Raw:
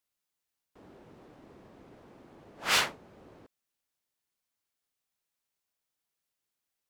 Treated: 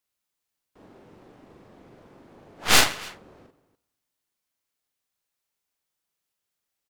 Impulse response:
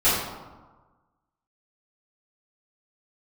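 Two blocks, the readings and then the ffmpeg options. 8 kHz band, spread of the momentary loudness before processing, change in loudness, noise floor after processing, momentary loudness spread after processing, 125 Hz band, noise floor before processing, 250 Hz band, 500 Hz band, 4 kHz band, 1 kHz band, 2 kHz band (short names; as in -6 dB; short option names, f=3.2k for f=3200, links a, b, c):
+11.0 dB, 10 LU, +7.5 dB, -84 dBFS, 17 LU, +11.5 dB, under -85 dBFS, +10.5 dB, +8.5 dB, +8.0 dB, +7.0 dB, +7.0 dB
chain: -filter_complex "[0:a]aecho=1:1:41|133|179|289:0.631|0.15|0.112|0.158,asplit=2[a][b];[1:a]atrim=start_sample=2205[c];[b][c]afir=irnorm=-1:irlink=0,volume=-41.5dB[d];[a][d]amix=inputs=2:normalize=0,aeval=exprs='0.282*(cos(1*acos(clip(val(0)/0.282,-1,1)))-cos(1*PI/2))+0.0398*(cos(3*acos(clip(val(0)/0.282,-1,1)))-cos(3*PI/2))+0.126*(cos(4*acos(clip(val(0)/0.282,-1,1)))-cos(4*PI/2))':c=same,volume=6dB"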